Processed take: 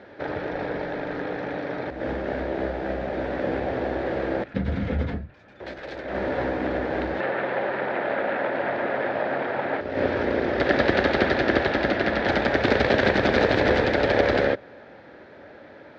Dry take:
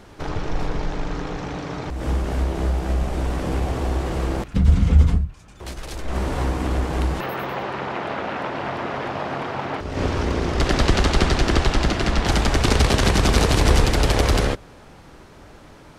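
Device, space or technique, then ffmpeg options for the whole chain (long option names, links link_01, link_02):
kitchen radio: -af "highpass=160,equalizer=frequency=160:width_type=q:width=4:gain=-9,equalizer=frequency=560:width_type=q:width=4:gain=8,equalizer=frequency=1100:width_type=q:width=4:gain=-9,equalizer=frequency=1700:width_type=q:width=4:gain=7,equalizer=frequency=2900:width_type=q:width=4:gain=-7,lowpass=frequency=3600:width=0.5412,lowpass=frequency=3600:width=1.3066"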